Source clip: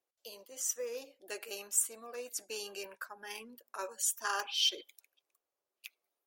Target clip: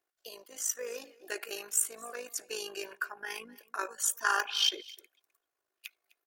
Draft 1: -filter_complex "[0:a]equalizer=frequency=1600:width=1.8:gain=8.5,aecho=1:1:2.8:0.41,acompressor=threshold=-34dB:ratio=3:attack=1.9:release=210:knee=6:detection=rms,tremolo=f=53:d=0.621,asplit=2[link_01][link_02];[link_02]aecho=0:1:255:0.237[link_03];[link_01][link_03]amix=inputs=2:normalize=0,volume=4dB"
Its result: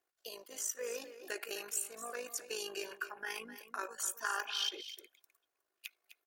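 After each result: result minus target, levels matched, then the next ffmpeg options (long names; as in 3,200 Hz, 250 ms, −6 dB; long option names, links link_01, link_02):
downward compressor: peak gain reduction +11 dB; echo-to-direct +9.5 dB
-filter_complex "[0:a]equalizer=frequency=1600:width=1.8:gain=8.5,aecho=1:1:2.8:0.41,tremolo=f=53:d=0.621,asplit=2[link_01][link_02];[link_02]aecho=0:1:255:0.237[link_03];[link_01][link_03]amix=inputs=2:normalize=0,volume=4dB"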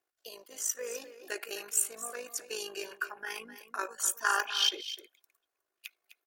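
echo-to-direct +9.5 dB
-filter_complex "[0:a]equalizer=frequency=1600:width=1.8:gain=8.5,aecho=1:1:2.8:0.41,tremolo=f=53:d=0.621,asplit=2[link_01][link_02];[link_02]aecho=0:1:255:0.0794[link_03];[link_01][link_03]amix=inputs=2:normalize=0,volume=4dB"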